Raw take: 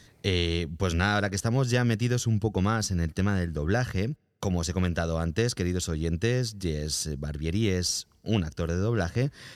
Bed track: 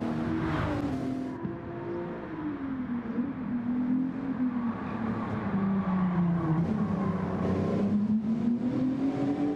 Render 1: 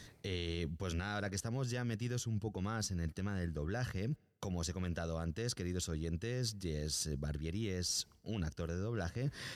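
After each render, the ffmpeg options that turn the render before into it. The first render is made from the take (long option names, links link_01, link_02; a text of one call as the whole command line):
ffmpeg -i in.wav -af "alimiter=limit=-17dB:level=0:latency=1,areverse,acompressor=threshold=-35dB:ratio=6,areverse" out.wav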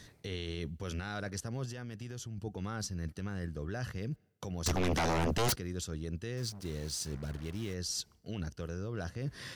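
ffmpeg -i in.wav -filter_complex "[0:a]asettb=1/sr,asplit=3[link_01][link_02][link_03];[link_01]atrim=end=1.654[link_04];[link_02]atrim=start=1.65:end=2.38,asetpts=PTS-STARTPTS,afade=type=in:duration=0.004:curve=qsin,afade=type=out:start_time=0.726:duration=0.004:curve=qsin,acompressor=threshold=-38dB:ratio=6:attack=3.2:release=140:knee=1:detection=peak[link_05];[link_03]atrim=start=2.376[link_06];[link_04][link_05]acrossfade=duration=0.004:curve1=hsin:curve2=qsin[link_07];[link_07][link_06]acrossfade=duration=0.004:curve1=qsin:curve2=hsin,asettb=1/sr,asplit=3[link_08][link_09][link_10];[link_08]atrim=end=4.664[link_11];[link_09]atrim=start=4.66:end=5.56,asetpts=PTS-STARTPTS,afade=type=in:duration=0.004:curve=qsin,afade=type=out:start_time=0.896:duration=0.004:curve=qsin,aeval=exprs='0.0531*sin(PI/2*4.47*val(0)/0.0531)':channel_layout=same[link_12];[link_10]atrim=start=5.556[link_13];[link_11][link_12]acrossfade=duration=0.004:curve1=hsin:curve2=qsin[link_14];[link_14][link_13]acrossfade=duration=0.004:curve1=qsin:curve2=hsin,asettb=1/sr,asplit=3[link_15][link_16][link_17];[link_15]atrim=end=6.374[link_18];[link_16]atrim=start=6.37:end=7.74,asetpts=PTS-STARTPTS,afade=type=in:duration=0.004:curve=qsin,afade=type=out:start_time=1.366:duration=0.004:curve=qsin,acrusher=bits=7:mix=0:aa=0.5[link_19];[link_17]atrim=start=7.736[link_20];[link_18][link_19]acrossfade=duration=0.004:curve1=hsin:curve2=qsin[link_21];[link_21][link_20]acrossfade=duration=0.004:curve1=qsin:curve2=hsin" out.wav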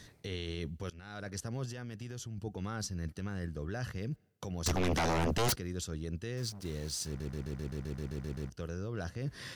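ffmpeg -i in.wav -filter_complex "[0:a]asplit=13[link_01][link_02][link_03][link_04][link_05][link_06][link_07][link_08][link_09][link_10][link_11][link_12][link_13];[link_01]atrim=end=0.9,asetpts=PTS-STARTPTS,afade=type=out:start_time=0.896:duration=0.004:curve=hsin:silence=0.0841395[link_14];[link_02]atrim=start=0.9:end=7.202,asetpts=PTS-STARTPTS,afade=type=in:duration=0.53:silence=0.0841395[link_15];[link_03]atrim=start=7.068:end=7.202[link_16];[link_04]atrim=start=7.068:end=7.202[link_17];[link_05]atrim=start=7.068:end=7.202[link_18];[link_06]atrim=start=7.068:end=7.202[link_19];[link_07]atrim=start=7.068:end=7.202[link_20];[link_08]atrim=start=7.068:end=7.202[link_21];[link_09]atrim=start=7.068:end=7.202[link_22];[link_10]atrim=start=7.068:end=7.202[link_23];[link_11]atrim=start=7.068:end=7.202[link_24];[link_12]atrim=start=7.068:end=7.202[link_25];[link_13]atrim=start=8.498[link_26];[link_14][link_15]concat=n=2:v=0:a=1[link_27];[link_27][link_16]acrossfade=duration=0.004:curve1=hsin:curve2=hsin[link_28];[link_28][link_17]acrossfade=duration=0.004:curve1=hsin:curve2=hsin[link_29];[link_29][link_18]acrossfade=duration=0.004:curve1=hsin:curve2=hsin[link_30];[link_30][link_19]acrossfade=duration=0.004:curve1=hsin:curve2=hsin[link_31];[link_31][link_20]acrossfade=duration=0.004:curve1=hsin:curve2=hsin[link_32];[link_32][link_21]acrossfade=duration=0.004:curve1=hsin:curve2=hsin[link_33];[link_33][link_22]acrossfade=duration=0.004:curve1=hsin:curve2=hsin[link_34];[link_34][link_23]acrossfade=duration=0.004:curve1=hsin:curve2=hsin[link_35];[link_35][link_24]acrossfade=duration=0.004:curve1=hsin:curve2=hsin[link_36];[link_36][link_25]acrossfade=duration=0.004:curve1=hsin:curve2=hsin[link_37];[link_37][link_26]acrossfade=duration=0.004:curve1=hsin:curve2=hsin" out.wav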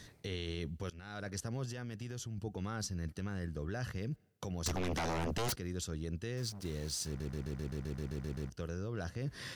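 ffmpeg -i in.wav -af "acompressor=threshold=-33dB:ratio=6" out.wav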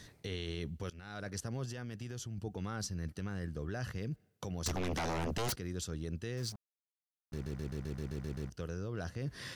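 ffmpeg -i in.wav -filter_complex "[0:a]asplit=3[link_01][link_02][link_03];[link_01]atrim=end=6.56,asetpts=PTS-STARTPTS,afade=type=out:start_time=6.556:duration=0.004:curve=hsin[link_04];[link_02]atrim=start=6.56:end=7.32,asetpts=PTS-STARTPTS,volume=0[link_05];[link_03]atrim=start=7.32,asetpts=PTS-STARTPTS,afade=type=in:duration=0.004:curve=hsin[link_06];[link_04][link_05][link_06]concat=n=3:v=0:a=1" out.wav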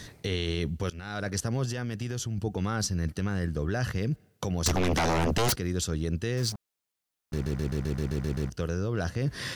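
ffmpeg -i in.wav -af "volume=10dB" out.wav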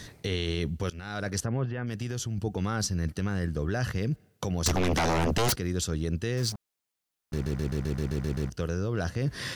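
ffmpeg -i in.wav -filter_complex "[0:a]asplit=3[link_01][link_02][link_03];[link_01]afade=type=out:start_time=1.44:duration=0.02[link_04];[link_02]lowpass=frequency=2500:width=0.5412,lowpass=frequency=2500:width=1.3066,afade=type=in:start_time=1.44:duration=0.02,afade=type=out:start_time=1.86:duration=0.02[link_05];[link_03]afade=type=in:start_time=1.86:duration=0.02[link_06];[link_04][link_05][link_06]amix=inputs=3:normalize=0" out.wav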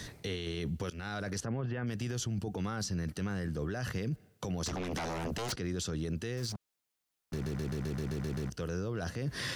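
ffmpeg -i in.wav -filter_complex "[0:a]acrossover=split=120|8000[link_01][link_02][link_03];[link_01]acompressor=threshold=-42dB:ratio=4[link_04];[link_02]acompressor=threshold=-28dB:ratio=4[link_05];[link_03]acompressor=threshold=-49dB:ratio=4[link_06];[link_04][link_05][link_06]amix=inputs=3:normalize=0,alimiter=level_in=3.5dB:limit=-24dB:level=0:latency=1:release=20,volume=-3.5dB" out.wav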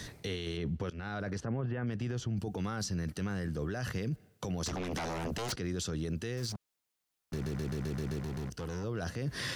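ffmpeg -i in.wav -filter_complex "[0:a]asettb=1/sr,asplit=3[link_01][link_02][link_03];[link_01]atrim=end=0.574[link_04];[link_02]atrim=start=0.57:end=2.37,asetpts=PTS-STARTPTS,afade=type=in:duration=0.004:curve=qsin,afade=type=out:start_time=1.796:duration=0.004:curve=qsin,aemphasis=mode=reproduction:type=75fm[link_05];[link_03]atrim=start=2.366[link_06];[link_04][link_05]acrossfade=duration=0.004:curve1=hsin:curve2=qsin[link_07];[link_07][link_06]acrossfade=duration=0.004:curve1=qsin:curve2=hsin,asettb=1/sr,asplit=3[link_08][link_09][link_10];[link_08]atrim=end=8.194[link_11];[link_09]atrim=start=8.19:end=8.84,asetpts=PTS-STARTPTS,afade=type=in:duration=0.004:curve=qsin,afade=type=out:start_time=0.646:duration=0.004:curve=qsin,volume=34.5dB,asoftclip=hard,volume=-34.5dB[link_12];[link_10]atrim=start=8.836[link_13];[link_11][link_12]acrossfade=duration=0.004:curve1=hsin:curve2=qsin[link_14];[link_14][link_13]acrossfade=duration=0.004:curve1=qsin:curve2=hsin" out.wav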